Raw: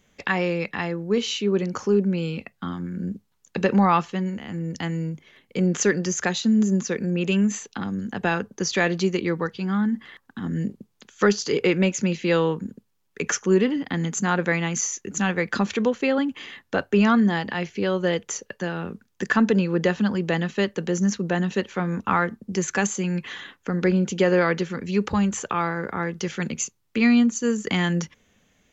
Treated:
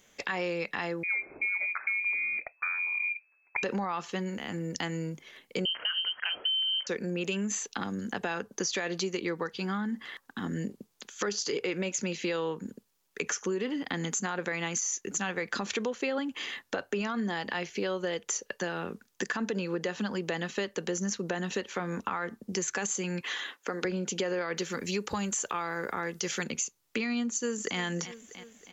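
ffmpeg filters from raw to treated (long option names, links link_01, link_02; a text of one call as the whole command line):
ffmpeg -i in.wav -filter_complex "[0:a]asettb=1/sr,asplit=3[link_01][link_02][link_03];[link_01]atrim=end=1.034[link_04];[link_02]atrim=start=1.03:end=3.63,asetpts=PTS-STARTPTS,afade=type=in:duration=0.004:curve=qsin,afade=type=out:start_time=2.596:duration=0.004:curve=qsin,lowpass=frequency=2200:width_type=q:width=0.5098,lowpass=frequency=2200:width_type=q:width=0.6013,lowpass=frequency=2200:width_type=q:width=0.9,lowpass=frequency=2200:width_type=q:width=2.563,afreqshift=-2600[link_05];[link_03]atrim=start=3.626[link_06];[link_04][link_05]acrossfade=duration=0.004:curve1=hsin:curve2=qsin[link_07];[link_07][link_06]acrossfade=duration=0.004:curve1=qsin:curve2=hsin,asettb=1/sr,asplit=3[link_08][link_09][link_10];[link_08]atrim=end=5.654[link_11];[link_09]atrim=start=5.65:end=6.87,asetpts=PTS-STARTPTS,afade=type=in:duration=0.004:curve=qsin,afade=type=out:start_time=1.216:duration=0.004:curve=qsin,lowpass=frequency=2800:width_type=q:width=0.5098,lowpass=frequency=2800:width_type=q:width=0.6013,lowpass=frequency=2800:width_type=q:width=0.9,lowpass=frequency=2800:width_type=q:width=2.563,afreqshift=-3300[link_12];[link_10]atrim=start=6.866[link_13];[link_11][link_12]acrossfade=duration=0.004:curve1=hsin:curve2=qsin[link_14];[link_14][link_13]acrossfade=duration=0.004:curve1=qsin:curve2=hsin,asettb=1/sr,asplit=3[link_15][link_16][link_17];[link_15]atrim=end=23.214[link_18];[link_16]atrim=start=23.21:end=23.85,asetpts=PTS-STARTPTS,afade=type=in:duration=0.004:curve=qsin,afade=type=out:start_time=0.636:duration=0.004:curve=qsin,highpass=310[link_19];[link_17]atrim=start=23.846[link_20];[link_18][link_19]acrossfade=duration=0.004:curve1=hsin:curve2=qsin[link_21];[link_21][link_20]acrossfade=duration=0.004:curve1=qsin:curve2=hsin,asettb=1/sr,asplit=3[link_22][link_23][link_24];[link_22]atrim=end=24.574[link_25];[link_23]atrim=start=24.57:end=26.44,asetpts=PTS-STARTPTS,afade=type=in:duration=0.004:curve=qsin,afade=type=out:start_time=1.866:duration=0.004:curve=qsin,highshelf=frequency=6700:gain=12[link_26];[link_24]atrim=start=26.436[link_27];[link_25][link_26]acrossfade=duration=0.004:curve1=hsin:curve2=qsin[link_28];[link_28][link_27]acrossfade=duration=0.004:curve1=qsin:curve2=hsin,asplit=2[link_29][link_30];[link_30]afade=type=in:start_time=27.26:duration=0.01,afade=type=out:start_time=27.79:duration=0.01,aecho=0:1:320|640|960|1280|1600:0.125893|0.0692409|0.0380825|0.0209454|0.01152[link_31];[link_29][link_31]amix=inputs=2:normalize=0,bass=frequency=250:gain=-10,treble=frequency=4000:gain=5,alimiter=limit=-16dB:level=0:latency=1:release=52,acompressor=threshold=-31dB:ratio=4,volume=1.5dB" out.wav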